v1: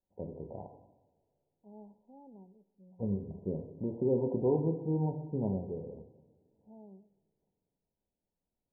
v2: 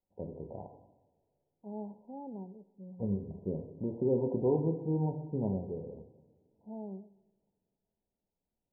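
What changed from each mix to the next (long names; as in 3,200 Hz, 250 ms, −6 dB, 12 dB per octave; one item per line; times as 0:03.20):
second voice +10.5 dB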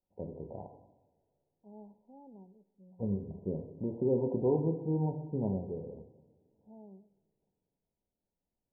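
second voice −10.0 dB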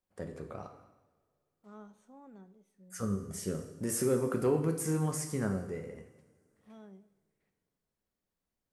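master: remove linear-phase brick-wall low-pass 1,000 Hz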